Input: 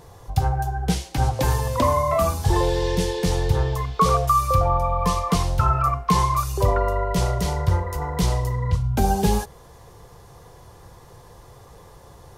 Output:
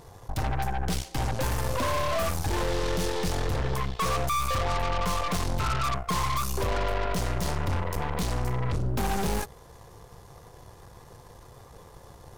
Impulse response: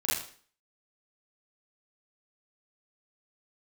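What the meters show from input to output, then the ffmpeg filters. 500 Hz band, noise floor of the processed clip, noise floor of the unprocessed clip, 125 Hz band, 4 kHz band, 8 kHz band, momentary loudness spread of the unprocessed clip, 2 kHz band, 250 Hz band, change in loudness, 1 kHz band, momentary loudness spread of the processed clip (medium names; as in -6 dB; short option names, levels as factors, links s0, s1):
-7.0 dB, -50 dBFS, -47 dBFS, -8.0 dB, -2.0 dB, -3.5 dB, 5 LU, 0.0 dB, -7.0 dB, -7.0 dB, -7.5 dB, 4 LU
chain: -af "asoftclip=type=tanh:threshold=0.0841,aeval=exprs='0.0841*(cos(1*acos(clip(val(0)/0.0841,-1,1)))-cos(1*PI/2))+0.0299*(cos(4*acos(clip(val(0)/0.0841,-1,1)))-cos(4*PI/2))':c=same,volume=0.708"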